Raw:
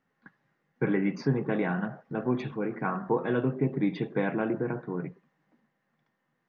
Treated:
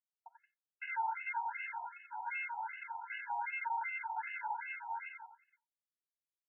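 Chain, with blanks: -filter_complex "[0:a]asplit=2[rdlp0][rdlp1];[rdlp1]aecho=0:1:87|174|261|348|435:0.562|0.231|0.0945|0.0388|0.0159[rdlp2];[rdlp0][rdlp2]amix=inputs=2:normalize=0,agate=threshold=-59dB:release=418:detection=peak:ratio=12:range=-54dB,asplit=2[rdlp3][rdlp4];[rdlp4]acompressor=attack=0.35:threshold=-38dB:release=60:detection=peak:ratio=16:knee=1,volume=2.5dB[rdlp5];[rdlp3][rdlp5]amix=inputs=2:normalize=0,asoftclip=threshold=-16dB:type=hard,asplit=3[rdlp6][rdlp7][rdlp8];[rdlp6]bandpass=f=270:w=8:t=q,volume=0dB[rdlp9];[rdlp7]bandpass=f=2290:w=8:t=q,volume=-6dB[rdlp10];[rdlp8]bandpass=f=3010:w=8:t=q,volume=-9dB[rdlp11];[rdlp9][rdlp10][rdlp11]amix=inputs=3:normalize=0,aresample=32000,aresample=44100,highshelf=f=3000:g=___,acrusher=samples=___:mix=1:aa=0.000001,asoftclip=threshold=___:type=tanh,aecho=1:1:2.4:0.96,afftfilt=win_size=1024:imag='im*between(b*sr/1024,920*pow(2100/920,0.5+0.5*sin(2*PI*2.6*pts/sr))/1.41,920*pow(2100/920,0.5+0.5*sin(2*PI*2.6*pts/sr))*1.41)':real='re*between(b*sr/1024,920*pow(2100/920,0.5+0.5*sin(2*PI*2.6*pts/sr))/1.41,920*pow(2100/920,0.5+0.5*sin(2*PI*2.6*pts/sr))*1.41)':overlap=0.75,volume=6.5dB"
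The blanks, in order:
11.5, 37, -29.5dB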